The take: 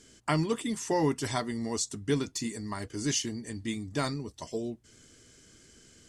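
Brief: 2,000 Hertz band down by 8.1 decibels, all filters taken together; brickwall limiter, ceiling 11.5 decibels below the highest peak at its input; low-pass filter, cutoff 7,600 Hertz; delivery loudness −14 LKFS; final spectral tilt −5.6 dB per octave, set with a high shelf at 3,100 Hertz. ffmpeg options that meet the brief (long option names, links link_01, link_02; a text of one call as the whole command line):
ffmpeg -i in.wav -af "lowpass=7600,equalizer=frequency=2000:width_type=o:gain=-7,highshelf=frequency=3100:gain=-9,volume=24dB,alimiter=limit=-4dB:level=0:latency=1" out.wav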